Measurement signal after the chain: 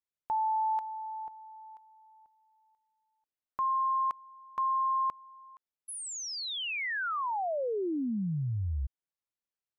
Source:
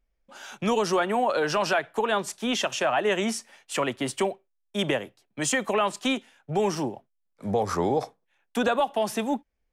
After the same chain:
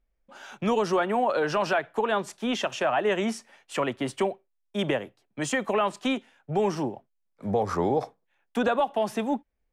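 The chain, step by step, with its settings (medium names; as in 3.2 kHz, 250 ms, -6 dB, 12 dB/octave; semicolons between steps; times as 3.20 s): treble shelf 3.7 kHz -9.5 dB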